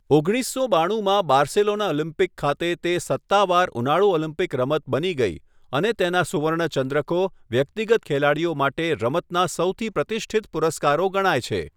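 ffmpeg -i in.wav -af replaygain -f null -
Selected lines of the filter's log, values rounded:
track_gain = +1.9 dB
track_peak = 0.404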